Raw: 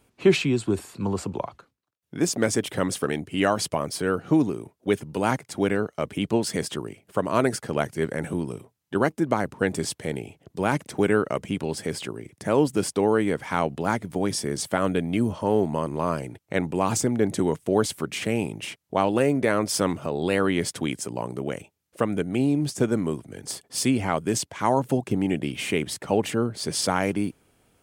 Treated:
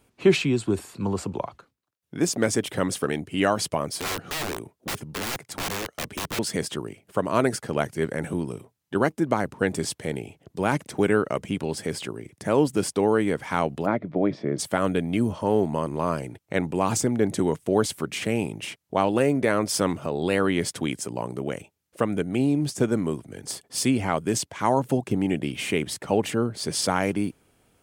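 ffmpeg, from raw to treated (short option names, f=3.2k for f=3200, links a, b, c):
-filter_complex "[0:a]asettb=1/sr,asplit=3[a][b][c];[a]atrim=end=4.004[d];[b]atrim=start=4:end=6.39,asetpts=PTS-STARTPTS,afade=t=in:d=0.004:c=qsin,afade=t=out:st=2.386:d=0.004:c=qsin,aeval=exprs='(mod(15.8*val(0)+1,2)-1)/15.8':c=same[e];[c]atrim=start=6.386[f];[d][e]acrossfade=d=0.004:c1=hsin:c2=qsin[g];[g][f]acrossfade=d=0.004:c1=qsin:c2=hsin,asplit=3[h][i][j];[h]afade=t=out:st=13.85:d=0.02[k];[i]highpass=130,equalizer=f=150:t=q:w=4:g=5,equalizer=f=310:t=q:w=4:g=5,equalizer=f=610:t=q:w=4:g=8,equalizer=f=880:t=q:w=4:g=-5,equalizer=f=1.6k:t=q:w=4:g=-5,equalizer=f=2.9k:t=q:w=4:g=-9,lowpass=f=3k:w=0.5412,lowpass=f=3k:w=1.3066,afade=t=in:st=13.85:d=0.02,afade=t=out:st=14.58:d=0.02[l];[j]afade=t=in:st=14.58:d=0.02[m];[k][l][m]amix=inputs=3:normalize=0"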